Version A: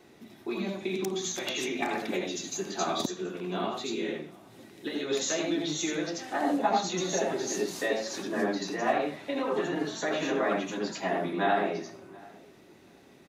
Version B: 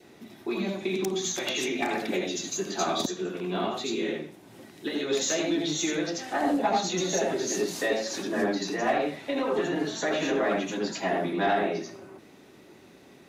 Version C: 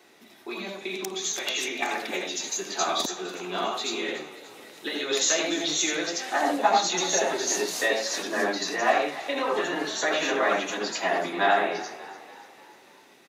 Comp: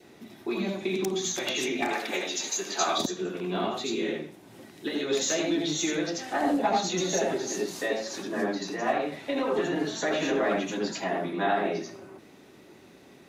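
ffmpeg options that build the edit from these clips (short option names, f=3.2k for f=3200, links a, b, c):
-filter_complex "[0:a]asplit=2[a][b];[1:a]asplit=4[c][d][e][f];[c]atrim=end=1.932[g];[2:a]atrim=start=1.928:end=2.982[h];[d]atrim=start=2.978:end=7.382[i];[a]atrim=start=7.378:end=9.122[j];[e]atrim=start=9.118:end=11.042[k];[b]atrim=start=11.038:end=11.652[l];[f]atrim=start=11.648[m];[g][h]acrossfade=d=0.004:c1=hsin:c2=hsin[n];[n][i]acrossfade=d=0.004:c1=hsin:c2=hsin[o];[o][j]acrossfade=d=0.004:c1=hsin:c2=hsin[p];[p][k]acrossfade=d=0.004:c1=hsin:c2=hsin[q];[q][l]acrossfade=d=0.004:c1=hsin:c2=hsin[r];[r][m]acrossfade=d=0.004:c1=hsin:c2=hsin"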